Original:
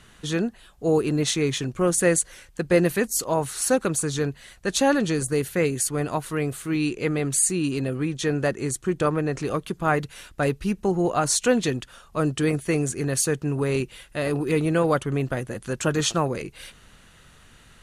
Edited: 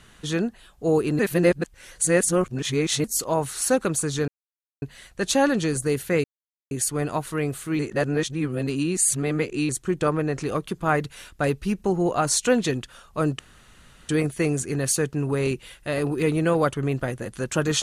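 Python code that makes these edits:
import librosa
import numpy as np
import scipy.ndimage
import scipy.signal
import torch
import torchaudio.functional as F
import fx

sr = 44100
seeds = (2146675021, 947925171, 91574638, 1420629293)

y = fx.edit(x, sr, fx.reverse_span(start_s=1.19, length_s=1.85),
    fx.insert_silence(at_s=4.28, length_s=0.54),
    fx.insert_silence(at_s=5.7, length_s=0.47),
    fx.reverse_span(start_s=6.78, length_s=1.9),
    fx.insert_room_tone(at_s=12.38, length_s=0.7), tone=tone)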